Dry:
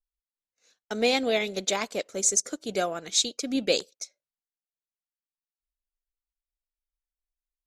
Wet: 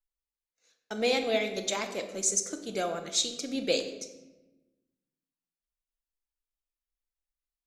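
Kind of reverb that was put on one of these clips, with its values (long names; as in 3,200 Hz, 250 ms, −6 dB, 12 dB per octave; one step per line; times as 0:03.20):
rectangular room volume 530 cubic metres, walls mixed, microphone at 0.73 metres
level −4.5 dB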